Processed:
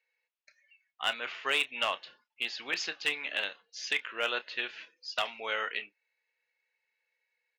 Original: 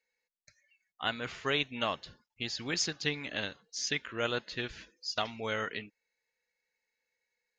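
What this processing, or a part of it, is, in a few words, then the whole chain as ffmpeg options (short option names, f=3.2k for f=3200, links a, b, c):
megaphone: -filter_complex "[0:a]highpass=580,lowpass=3.7k,equalizer=f=2.7k:t=o:w=0.51:g=6,asoftclip=type=hard:threshold=-21.5dB,asplit=2[a][b];[b]adelay=30,volume=-14dB[c];[a][c]amix=inputs=2:normalize=0,volume=2dB"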